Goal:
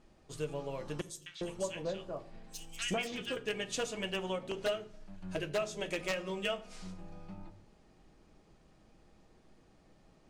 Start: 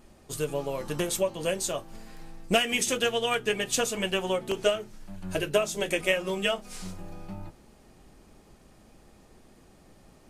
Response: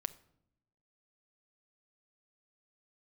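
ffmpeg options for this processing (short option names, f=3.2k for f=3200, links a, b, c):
-filter_complex "[0:a]lowpass=6.3k,aeval=exprs='0.141*(abs(mod(val(0)/0.141+3,4)-2)-1)':c=same,asettb=1/sr,asplit=3[a][b][c];[a]atrim=end=1.014[d];[b]atrim=start=1.01:end=3.37,asetpts=PTS-STARTPTS,afade=t=in:d=0.004:c=qsin,afade=t=out:st=2.356:d=0.004:c=qsin,acrossover=split=1500|4600[e][f][g];[f]adelay=250[h];[e]adelay=400[i];[i][h][g]amix=inputs=3:normalize=0,atrim=end_sample=104076[j];[c]atrim=start=3.366[k];[d][j]acrossfade=d=0.004:c1=hsin:c2=qsin[l];[l][k]acrossfade=d=0.004:c1=qsin:c2=hsin[m];[1:a]atrim=start_sample=2205,afade=t=out:st=0.41:d=0.01,atrim=end_sample=18522[n];[m][n]afir=irnorm=-1:irlink=0,volume=-7dB"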